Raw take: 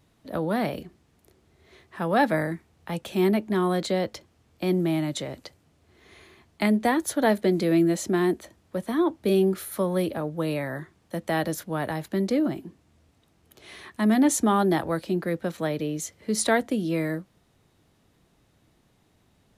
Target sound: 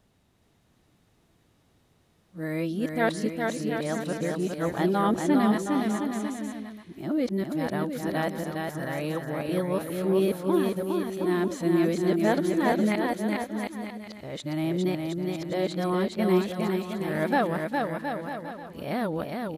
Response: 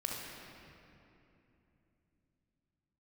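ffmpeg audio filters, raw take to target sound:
-filter_complex "[0:a]areverse,aecho=1:1:410|717.5|948.1|1121|1251:0.631|0.398|0.251|0.158|0.1,acrossover=split=3600[s0][s1];[s1]acompressor=threshold=0.0112:ratio=4:attack=1:release=60[s2];[s0][s2]amix=inputs=2:normalize=0,volume=0.708"

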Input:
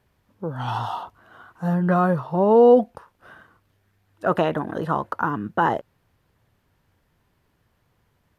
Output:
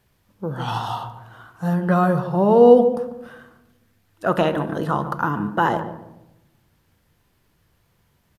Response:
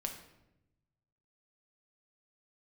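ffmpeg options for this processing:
-filter_complex "[0:a]highshelf=f=2600:g=9,asplit=2[s0][s1];[s1]adelay=144,lowpass=f=880:p=1,volume=0.355,asplit=2[s2][s3];[s3]adelay=144,lowpass=f=880:p=1,volume=0.37,asplit=2[s4][s5];[s5]adelay=144,lowpass=f=880:p=1,volume=0.37,asplit=2[s6][s7];[s7]adelay=144,lowpass=f=880:p=1,volume=0.37[s8];[s0][s2][s4][s6][s8]amix=inputs=5:normalize=0,asplit=2[s9][s10];[1:a]atrim=start_sample=2205,lowshelf=f=420:g=7[s11];[s10][s11]afir=irnorm=-1:irlink=0,volume=0.631[s12];[s9][s12]amix=inputs=2:normalize=0,volume=0.596"

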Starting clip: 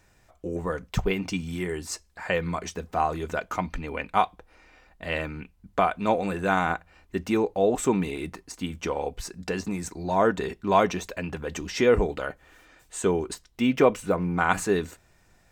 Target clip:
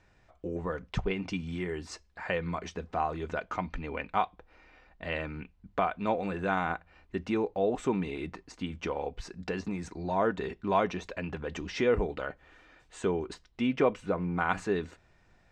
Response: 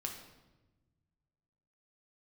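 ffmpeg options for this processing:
-filter_complex "[0:a]lowpass=4100,asplit=2[s0][s1];[s1]acompressor=threshold=0.0282:ratio=6,volume=0.794[s2];[s0][s2]amix=inputs=2:normalize=0,volume=0.422"

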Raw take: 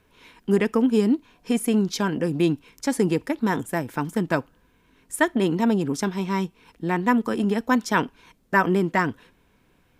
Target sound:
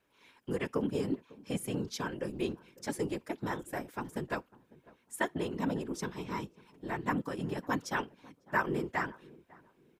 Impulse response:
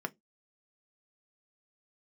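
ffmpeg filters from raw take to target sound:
-filter_complex "[0:a]highpass=f=260:p=1,afftfilt=real='hypot(re,im)*cos(2*PI*random(0))':imag='hypot(re,im)*sin(2*PI*random(1))':win_size=512:overlap=0.75,asplit=2[s0][s1];[s1]adelay=550,lowpass=f=940:p=1,volume=0.0891,asplit=2[s2][s3];[s3]adelay=550,lowpass=f=940:p=1,volume=0.31[s4];[s0][s2][s4]amix=inputs=3:normalize=0,volume=0.596"

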